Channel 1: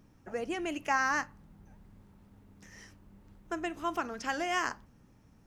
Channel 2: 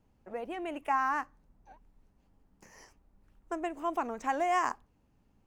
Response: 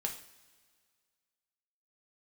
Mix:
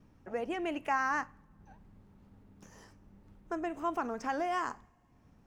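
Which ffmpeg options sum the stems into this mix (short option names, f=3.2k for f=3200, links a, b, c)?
-filter_complex "[0:a]acompressor=mode=upward:threshold=-45dB:ratio=2.5,agate=range=-33dB:threshold=-50dB:ratio=3:detection=peak,highshelf=f=6.2k:g=-10.5,volume=-5.5dB[a];[1:a]alimiter=level_in=3dB:limit=-24dB:level=0:latency=1:release=42,volume=-3dB,volume=-5.5dB,asplit=2[b][c];[c]volume=-8.5dB[d];[2:a]atrim=start_sample=2205[e];[d][e]afir=irnorm=-1:irlink=0[f];[a][b][f]amix=inputs=3:normalize=0"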